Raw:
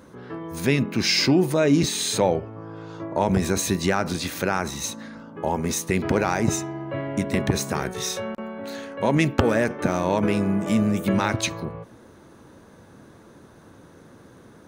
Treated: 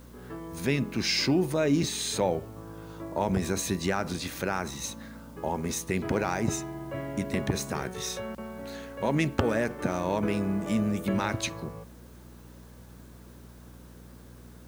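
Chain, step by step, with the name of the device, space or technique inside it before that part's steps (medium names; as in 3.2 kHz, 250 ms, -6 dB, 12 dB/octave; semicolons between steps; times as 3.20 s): video cassette with head-switching buzz (mains buzz 60 Hz, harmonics 4, -44 dBFS; white noise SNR 31 dB); trim -6 dB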